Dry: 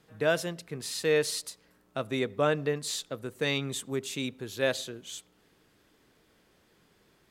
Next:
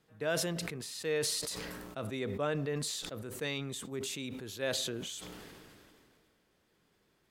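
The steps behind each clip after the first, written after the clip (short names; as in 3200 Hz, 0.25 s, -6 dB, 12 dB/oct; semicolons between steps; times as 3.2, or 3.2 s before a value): sustainer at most 24 dB/s; gain -8 dB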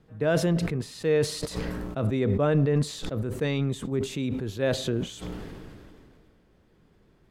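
tilt -3 dB/oct; gain +6.5 dB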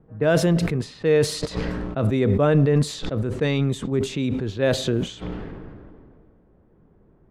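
low-pass opened by the level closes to 960 Hz, open at -23 dBFS; gain +5 dB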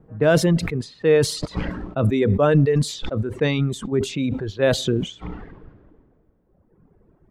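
reverb removal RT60 1.8 s; gain +3 dB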